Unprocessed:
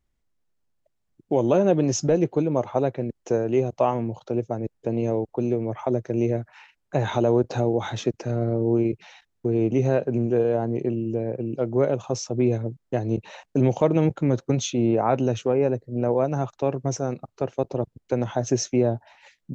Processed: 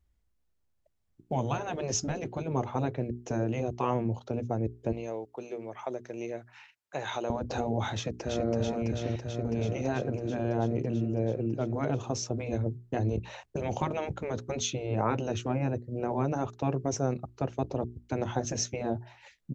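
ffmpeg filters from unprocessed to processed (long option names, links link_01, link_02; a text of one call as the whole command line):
ffmpeg -i in.wav -filter_complex "[0:a]asettb=1/sr,asplit=3[link_01][link_02][link_03];[link_01]atrim=end=4.924[link_04];[link_02]atrim=start=4.92:end=7.3,asetpts=PTS-STARTPTS,afade=type=in:duration=0.004:curve=qsin,afade=type=out:start_time=2.376:duration=0.004:curve=qsin,highpass=frequency=1200:poles=1[link_05];[link_03]atrim=start=7.296[link_06];[link_04][link_05]acrossfade=duration=0.004:curve1=hsin:curve2=qsin[link_07];[link_07][link_06]acrossfade=duration=0.004:curve1=qsin:curve2=hsin,asplit=2[link_08][link_09];[link_09]afade=type=in:start_time=7.94:duration=0.01,afade=type=out:start_time=8.49:duration=0.01,aecho=0:1:330|660|990|1320|1650|1980|2310|2640|2970|3300|3630|3960:0.668344|0.534675|0.42774|0.342192|0.273754|0.219003|0.175202|0.140162|0.11213|0.0897036|0.0717629|0.0574103[link_10];[link_08][link_10]amix=inputs=2:normalize=0,afftfilt=real='re*lt(hypot(re,im),0.447)':imag='im*lt(hypot(re,im),0.447)':win_size=1024:overlap=0.75,equalizer=frequency=62:width_type=o:width=1.2:gain=13,bandreject=frequency=60:width_type=h:width=6,bandreject=frequency=120:width_type=h:width=6,bandreject=frequency=180:width_type=h:width=6,bandreject=frequency=240:width_type=h:width=6,bandreject=frequency=300:width_type=h:width=6,bandreject=frequency=360:width_type=h:width=6,bandreject=frequency=420:width_type=h:width=6,volume=-2.5dB" out.wav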